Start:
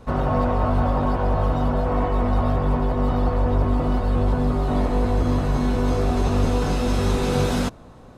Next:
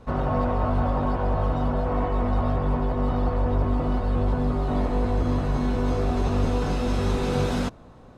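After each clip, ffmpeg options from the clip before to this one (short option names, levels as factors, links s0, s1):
-af "highshelf=f=7700:g=-8.5,volume=0.708"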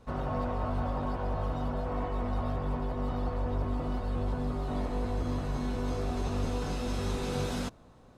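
-af "highshelf=f=3900:g=8,volume=0.376"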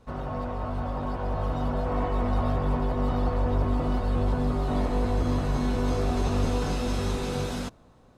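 -af "dynaudnorm=f=410:g=7:m=2.11"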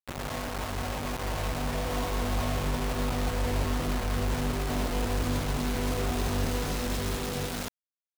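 -af "acrusher=bits=4:mix=0:aa=0.000001,volume=0.631"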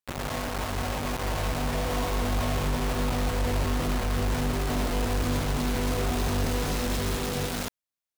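-af "asoftclip=type=tanh:threshold=0.0794,volume=1.5"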